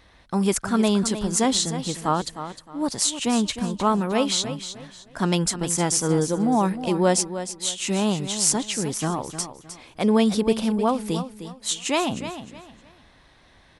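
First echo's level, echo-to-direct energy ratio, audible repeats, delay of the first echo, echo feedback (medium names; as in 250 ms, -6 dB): -11.0 dB, -10.5 dB, 3, 308 ms, 28%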